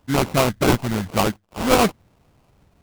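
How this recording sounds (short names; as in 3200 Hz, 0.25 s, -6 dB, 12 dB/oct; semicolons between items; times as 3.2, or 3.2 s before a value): phasing stages 4, 0.74 Hz, lowest notch 460–1200 Hz; aliases and images of a low sample rate 1800 Hz, jitter 20%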